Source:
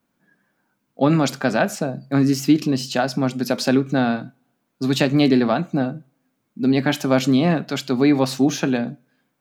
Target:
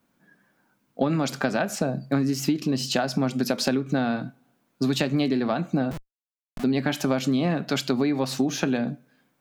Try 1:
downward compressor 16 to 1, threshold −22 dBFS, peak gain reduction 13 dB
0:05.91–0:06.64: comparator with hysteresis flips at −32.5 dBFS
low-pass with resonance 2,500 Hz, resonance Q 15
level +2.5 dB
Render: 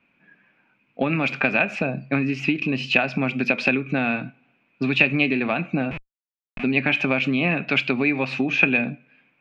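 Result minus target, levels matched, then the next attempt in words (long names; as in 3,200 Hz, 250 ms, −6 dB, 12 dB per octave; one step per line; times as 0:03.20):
2,000 Hz band +9.0 dB
downward compressor 16 to 1, threshold −22 dBFS, peak gain reduction 13 dB
0:05.91–0:06.64: comparator with hysteresis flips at −32.5 dBFS
level +2.5 dB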